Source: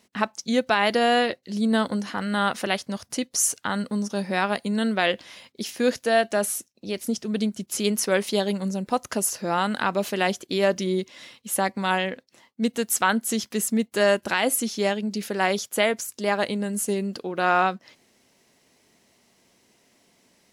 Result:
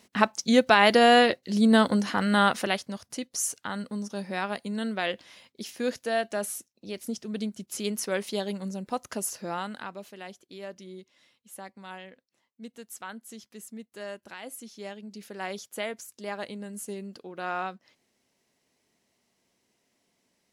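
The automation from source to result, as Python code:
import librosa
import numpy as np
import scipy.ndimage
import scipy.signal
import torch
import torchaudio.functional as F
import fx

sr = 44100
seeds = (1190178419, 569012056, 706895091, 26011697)

y = fx.gain(x, sr, db=fx.line((2.39, 2.5), (3.03, -7.0), (9.45, -7.0), (10.12, -19.0), (14.4, -19.0), (15.57, -11.5)))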